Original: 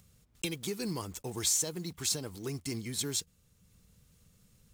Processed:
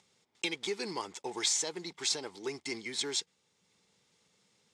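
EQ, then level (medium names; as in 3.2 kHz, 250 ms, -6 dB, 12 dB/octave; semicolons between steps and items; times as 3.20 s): cabinet simulation 300–8100 Hz, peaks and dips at 390 Hz +6 dB, 860 Hz +10 dB, 2.1 kHz +7 dB, 3.5 kHz +6 dB, 5 kHz +4 dB; dynamic bell 1.7 kHz, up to +4 dB, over -47 dBFS, Q 0.95; -2.0 dB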